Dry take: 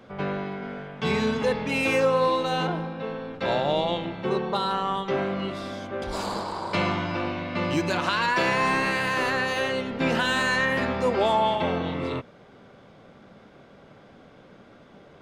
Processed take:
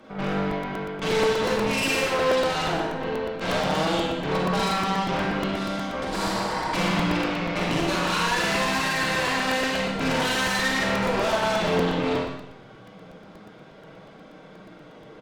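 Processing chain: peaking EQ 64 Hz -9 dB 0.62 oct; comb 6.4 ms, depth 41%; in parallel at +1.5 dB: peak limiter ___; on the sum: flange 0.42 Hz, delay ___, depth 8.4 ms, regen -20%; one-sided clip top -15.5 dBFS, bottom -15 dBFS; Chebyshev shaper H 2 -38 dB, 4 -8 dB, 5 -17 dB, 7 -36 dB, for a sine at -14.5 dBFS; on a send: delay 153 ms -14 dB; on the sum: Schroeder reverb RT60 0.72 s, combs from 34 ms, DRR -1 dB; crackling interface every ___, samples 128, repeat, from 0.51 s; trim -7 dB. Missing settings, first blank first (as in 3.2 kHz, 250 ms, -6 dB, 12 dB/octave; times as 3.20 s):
-19 dBFS, 3.3 ms, 0.12 s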